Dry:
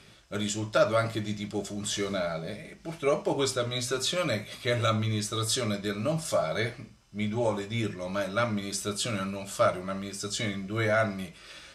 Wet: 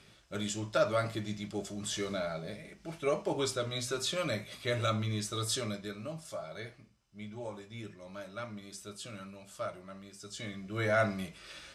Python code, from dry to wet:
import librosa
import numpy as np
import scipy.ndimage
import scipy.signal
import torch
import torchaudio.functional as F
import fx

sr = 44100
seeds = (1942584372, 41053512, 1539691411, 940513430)

y = fx.gain(x, sr, db=fx.line((5.53, -5.0), (6.22, -14.0), (10.2, -14.0), (11.02, -2.0)))